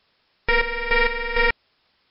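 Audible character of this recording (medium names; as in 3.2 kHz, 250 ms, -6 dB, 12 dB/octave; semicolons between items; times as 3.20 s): aliases and images of a low sample rate 4.2 kHz, jitter 0%; chopped level 2.2 Hz, depth 65%, duty 35%; a quantiser's noise floor 12-bit, dither triangular; MP3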